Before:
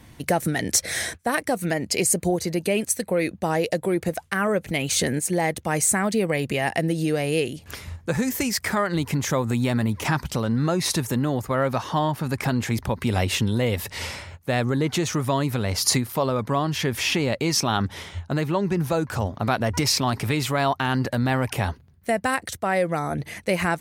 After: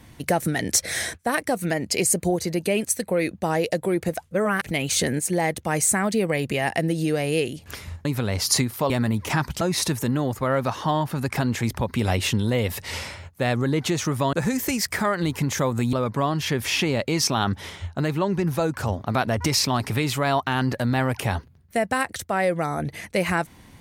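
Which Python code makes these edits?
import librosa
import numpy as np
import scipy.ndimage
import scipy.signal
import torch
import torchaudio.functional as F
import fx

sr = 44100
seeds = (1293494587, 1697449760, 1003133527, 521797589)

y = fx.edit(x, sr, fx.reverse_span(start_s=4.31, length_s=0.31),
    fx.swap(start_s=8.05, length_s=1.6, other_s=15.41, other_length_s=0.85),
    fx.cut(start_s=10.36, length_s=0.33), tone=tone)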